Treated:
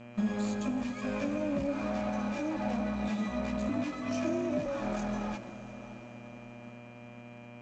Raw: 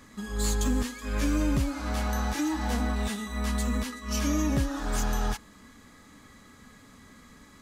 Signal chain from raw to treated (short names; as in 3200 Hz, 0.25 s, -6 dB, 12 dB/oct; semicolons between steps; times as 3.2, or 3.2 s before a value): expander -41 dBFS; bell 920 Hz +8.5 dB 2.9 oct; notches 50/100/150/200 Hz; compressor 4:1, threshold -34 dBFS, peak gain reduction 12 dB; flange 0.43 Hz, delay 8.7 ms, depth 3 ms, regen -25%; one-sided clip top -43.5 dBFS; buzz 120 Hz, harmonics 27, -56 dBFS -4 dB/oct; small resonant body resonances 210/570/2400 Hz, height 15 dB, ringing for 35 ms; 3.69–4.66 frequency shift +42 Hz; diffused feedback echo 0.624 s, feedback 47%, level -14 dB; G.722 64 kbps 16000 Hz